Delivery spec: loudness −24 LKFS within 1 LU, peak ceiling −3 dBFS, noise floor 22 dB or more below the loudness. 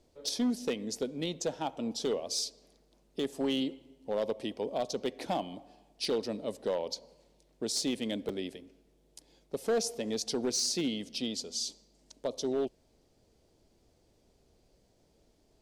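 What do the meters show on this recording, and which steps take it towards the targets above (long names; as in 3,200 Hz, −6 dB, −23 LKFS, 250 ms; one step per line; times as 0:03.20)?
share of clipped samples 0.9%; peaks flattened at −24.5 dBFS; number of dropouts 1; longest dropout 4.2 ms; integrated loudness −34.0 LKFS; sample peak −24.5 dBFS; target loudness −24.0 LKFS
→ clipped peaks rebuilt −24.5 dBFS
repair the gap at 0:08.29, 4.2 ms
level +10 dB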